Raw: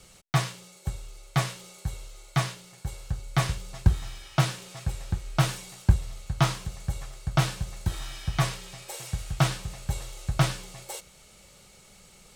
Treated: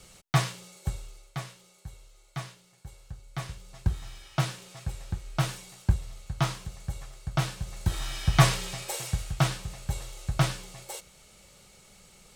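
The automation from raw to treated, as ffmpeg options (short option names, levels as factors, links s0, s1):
-af "volume=8.91,afade=t=out:st=0.92:d=0.46:silence=0.266073,afade=t=in:st=3.47:d=0.71:silence=0.446684,afade=t=in:st=7.57:d=1.05:silence=0.266073,afade=t=out:st=8.62:d=0.73:silence=0.354813"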